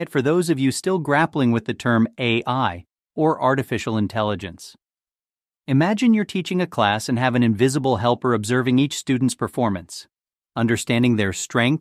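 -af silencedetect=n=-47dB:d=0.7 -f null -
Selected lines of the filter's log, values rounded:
silence_start: 4.75
silence_end: 5.68 | silence_duration: 0.93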